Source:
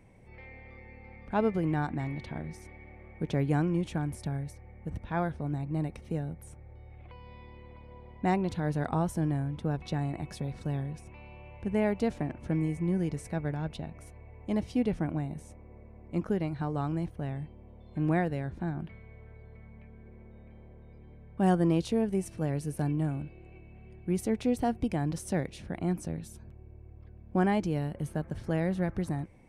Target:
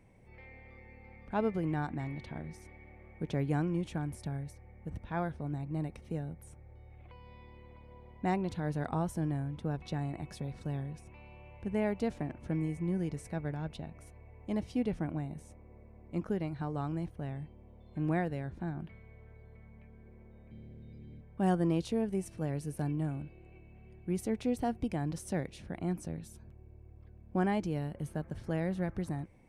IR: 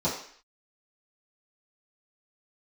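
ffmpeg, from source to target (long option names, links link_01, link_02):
-filter_complex "[0:a]asettb=1/sr,asplit=3[link_01][link_02][link_03];[link_01]atrim=end=20.514[link_04];[link_02]atrim=start=20.51:end=21.21,asetpts=PTS-STARTPTS,afade=type=in:duration=0.004:curve=qsin,afade=type=out:start_time=0.696:duration=0.004:curve=qsin,equalizer=frequency=125:width_type=o:width=1:gain=8,equalizer=frequency=250:width_type=o:width=1:gain=8,equalizer=frequency=1000:width_type=o:width=1:gain=-9,equalizer=frequency=4000:width_type=o:width=1:gain=12[link_05];[link_03]atrim=start=21.206[link_06];[link_04][link_05]acrossfade=duration=0.004:curve1=hsin:curve2=qsin[link_07];[link_07][link_06]acrossfade=duration=0.004:curve1=qsin:curve2=hsin,volume=-4dB"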